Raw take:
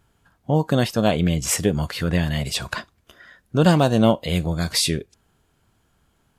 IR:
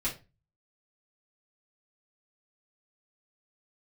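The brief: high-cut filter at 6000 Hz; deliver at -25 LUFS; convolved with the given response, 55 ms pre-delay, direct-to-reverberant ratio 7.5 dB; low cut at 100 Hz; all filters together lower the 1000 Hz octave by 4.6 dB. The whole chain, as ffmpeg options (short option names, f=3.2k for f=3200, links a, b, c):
-filter_complex "[0:a]highpass=100,lowpass=6k,equalizer=f=1k:t=o:g=-7,asplit=2[a][b];[1:a]atrim=start_sample=2205,adelay=55[c];[b][c]afir=irnorm=-1:irlink=0,volume=-13dB[d];[a][d]amix=inputs=2:normalize=0,volume=-3dB"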